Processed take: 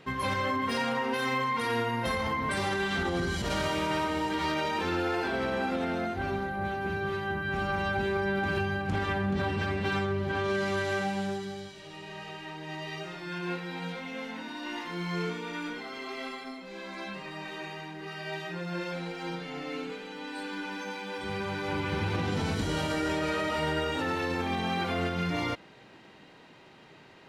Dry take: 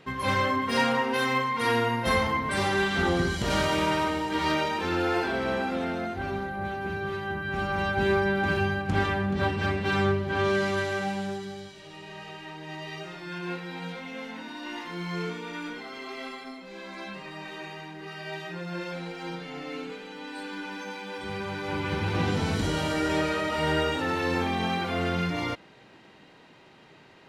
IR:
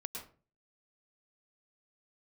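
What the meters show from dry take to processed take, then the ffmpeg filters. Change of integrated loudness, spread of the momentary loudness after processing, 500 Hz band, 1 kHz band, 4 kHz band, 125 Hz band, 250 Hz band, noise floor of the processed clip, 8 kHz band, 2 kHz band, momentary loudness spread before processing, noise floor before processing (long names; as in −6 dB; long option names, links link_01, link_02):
−3.0 dB, 10 LU, −3.0 dB, −3.0 dB, −3.0 dB, −3.0 dB, −2.5 dB, −53 dBFS, −3.0 dB, −3.0 dB, 14 LU, −53 dBFS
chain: -af "alimiter=limit=-21dB:level=0:latency=1:release=76"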